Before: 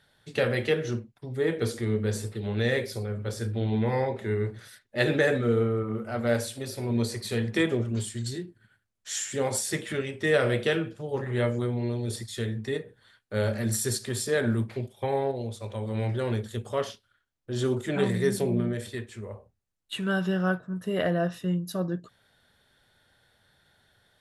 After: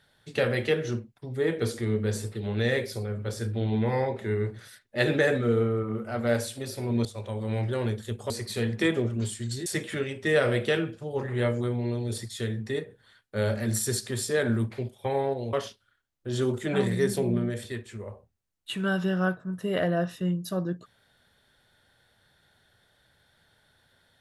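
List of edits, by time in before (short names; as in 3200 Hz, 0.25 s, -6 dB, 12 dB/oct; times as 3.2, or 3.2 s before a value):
8.41–9.64 cut
15.51–16.76 move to 7.05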